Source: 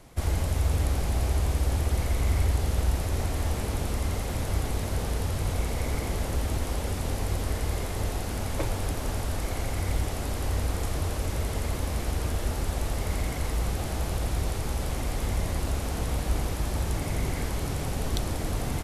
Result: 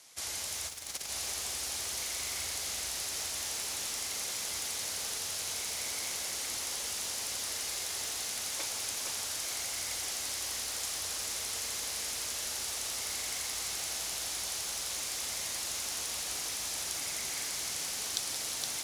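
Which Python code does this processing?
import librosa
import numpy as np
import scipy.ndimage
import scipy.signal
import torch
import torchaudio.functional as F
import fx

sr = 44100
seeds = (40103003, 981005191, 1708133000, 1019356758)

p1 = x + fx.echo_single(x, sr, ms=467, db=-6.0, dry=0)
p2 = fx.over_compress(p1, sr, threshold_db=-26.0, ratio=-0.5, at=(0.67, 1.08), fade=0.02)
p3 = fx.bandpass_q(p2, sr, hz=6700.0, q=1.2)
p4 = 10.0 ** (-33.5 / 20.0) * np.tanh(p3 / 10.0 ** (-33.5 / 20.0))
p5 = p3 + (p4 * 10.0 ** (-0.5 / 20.0))
p6 = fx.peak_eq(p5, sr, hz=7900.0, db=-4.0, octaves=0.28)
p7 = fx.echo_crushed(p6, sr, ms=174, feedback_pct=80, bits=8, wet_db=-11.0)
y = p7 * 10.0 ** (3.5 / 20.0)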